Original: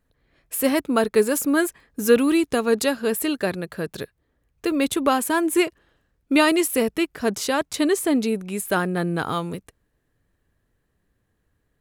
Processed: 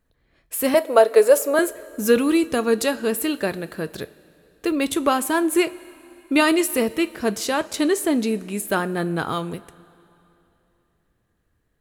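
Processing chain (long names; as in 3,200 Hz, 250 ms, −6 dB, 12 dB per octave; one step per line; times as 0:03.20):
0:00.74–0:01.59: high-pass with resonance 550 Hz, resonance Q 4.9
coupled-rooms reverb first 0.24 s, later 3 s, from −18 dB, DRR 12 dB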